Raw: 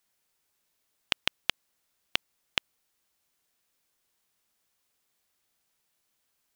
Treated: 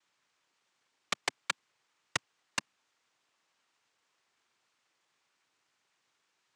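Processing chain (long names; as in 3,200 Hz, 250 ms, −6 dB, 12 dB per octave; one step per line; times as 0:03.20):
cochlear-implant simulation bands 4
high-shelf EQ 4,200 Hz −11 dB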